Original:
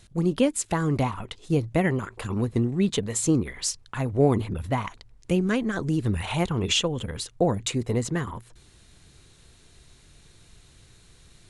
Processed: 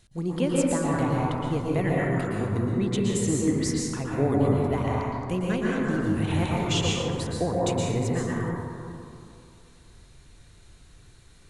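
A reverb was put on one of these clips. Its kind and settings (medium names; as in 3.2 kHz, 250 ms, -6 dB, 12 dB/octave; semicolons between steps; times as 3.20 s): plate-style reverb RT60 2.5 s, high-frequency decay 0.3×, pre-delay 105 ms, DRR -5 dB; trim -6 dB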